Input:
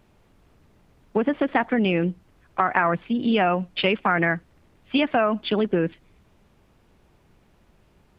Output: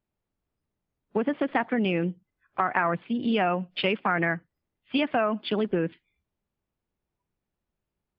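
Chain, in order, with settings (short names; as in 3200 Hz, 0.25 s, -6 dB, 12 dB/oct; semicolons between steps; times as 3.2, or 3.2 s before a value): spectral noise reduction 22 dB; gain -4 dB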